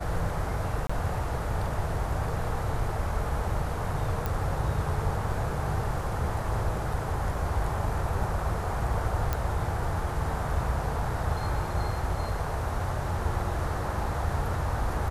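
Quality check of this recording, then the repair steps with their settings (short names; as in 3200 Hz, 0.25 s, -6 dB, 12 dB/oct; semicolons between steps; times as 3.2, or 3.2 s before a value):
0.87–0.9 gap 25 ms
4.26 pop
9.33 pop -13 dBFS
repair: de-click; interpolate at 0.87, 25 ms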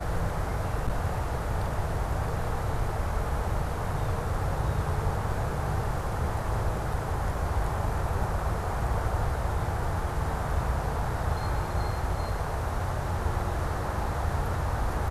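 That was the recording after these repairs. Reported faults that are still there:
4.26 pop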